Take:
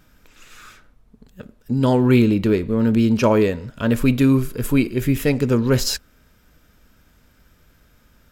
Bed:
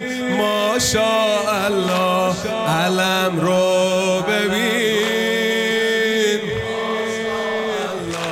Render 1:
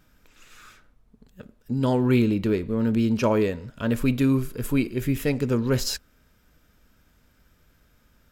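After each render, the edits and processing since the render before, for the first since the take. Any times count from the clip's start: gain -5.5 dB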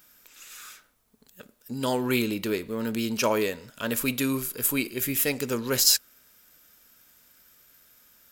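RIAA curve recording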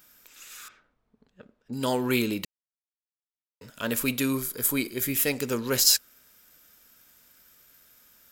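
0.68–1.73 tape spacing loss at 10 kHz 33 dB; 2.45–3.61 mute; 4.34–5.08 notch 2700 Hz, Q 6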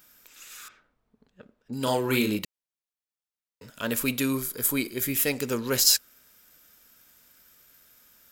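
1.83–2.39 doubler 38 ms -5 dB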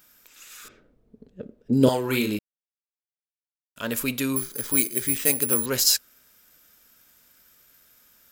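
0.64–1.89 resonant low shelf 670 Hz +12 dB, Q 1.5; 2.39–3.76 mute; 4.36–5.66 careless resampling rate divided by 4×, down filtered, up zero stuff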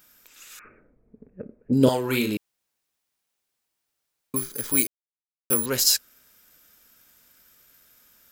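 0.59–1.72 steep low-pass 2500 Hz 96 dB/oct; 2.37–4.34 room tone; 4.87–5.5 mute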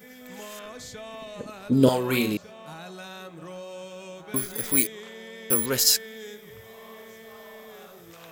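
add bed -23.5 dB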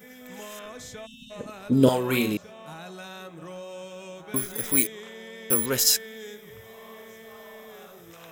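notch 4500 Hz, Q 6.6; 1.06–1.31 spectral delete 270–2600 Hz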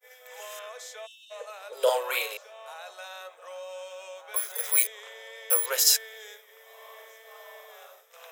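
steep high-pass 470 Hz 72 dB/oct; expander -46 dBFS

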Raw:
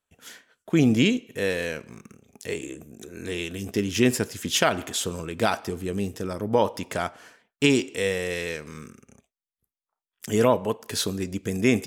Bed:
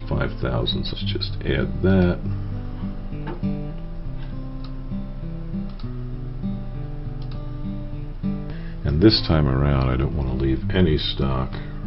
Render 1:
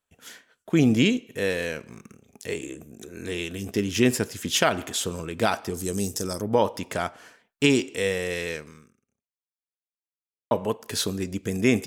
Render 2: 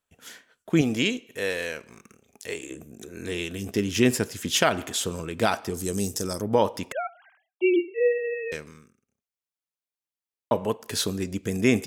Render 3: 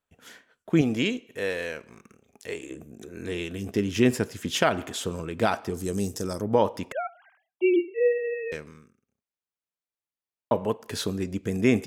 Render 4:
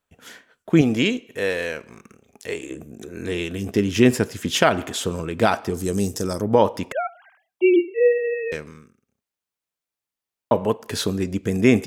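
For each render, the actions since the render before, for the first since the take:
5.74–6.42 resonant high shelf 4000 Hz +12.5 dB, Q 1.5; 8.58–10.51 fade out exponential
0.81–2.71 bell 140 Hz -9 dB 2.6 oct; 6.92–8.52 sine-wave speech
high shelf 3200 Hz -8 dB
gain +5.5 dB; limiter -3 dBFS, peak gain reduction 1 dB

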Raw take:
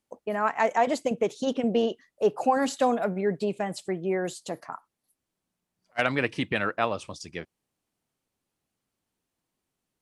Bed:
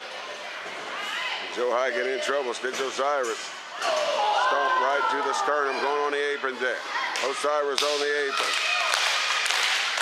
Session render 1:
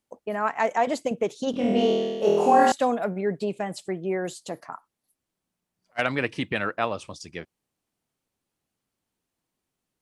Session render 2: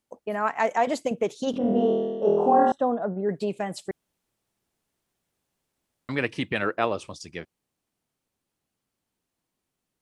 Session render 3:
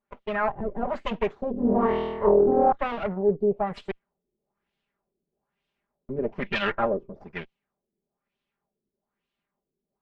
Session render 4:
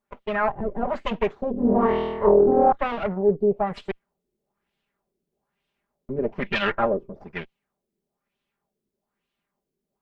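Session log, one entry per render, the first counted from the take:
1.51–2.72 flutter echo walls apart 4.2 m, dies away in 1.5 s
1.58–3.29 running mean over 19 samples; 3.91–6.09 room tone; 6.62–7.08 bell 380 Hz +7 dB
minimum comb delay 5 ms; LFO low-pass sine 1.1 Hz 360–3200 Hz
gain +2.5 dB

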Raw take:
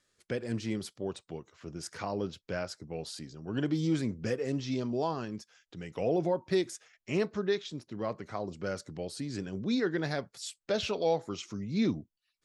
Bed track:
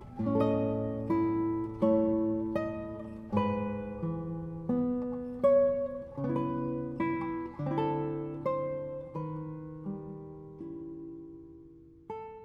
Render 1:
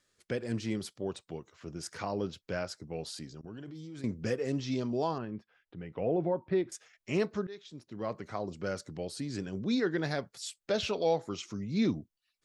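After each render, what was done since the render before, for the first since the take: 3.41–4.04 level quantiser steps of 22 dB; 5.18–6.72 air absorption 480 m; 7.47–8.18 fade in, from -20.5 dB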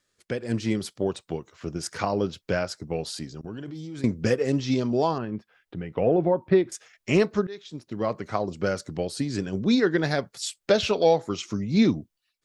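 transient shaper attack +4 dB, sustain -1 dB; AGC gain up to 7.5 dB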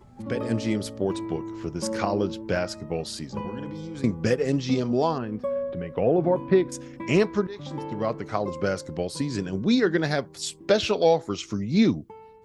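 add bed track -4.5 dB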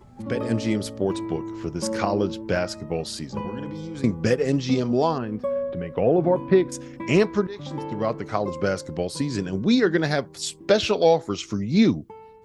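gain +2 dB

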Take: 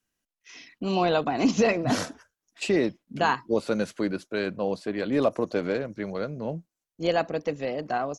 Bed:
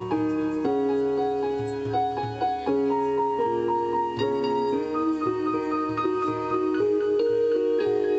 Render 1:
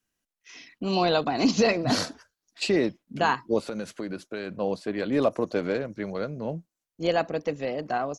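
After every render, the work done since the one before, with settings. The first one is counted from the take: 0.92–2.7 bell 4400 Hz +10 dB 0.4 oct; 3.59–4.6 compressor, threshold -28 dBFS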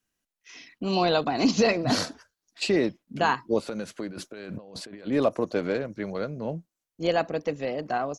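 4.09–5.07 negative-ratio compressor -41 dBFS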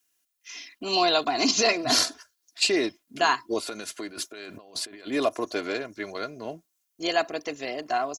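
tilt +3 dB/oct; comb 2.9 ms, depth 59%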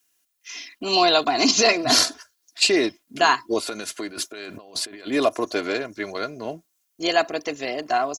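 gain +4.5 dB

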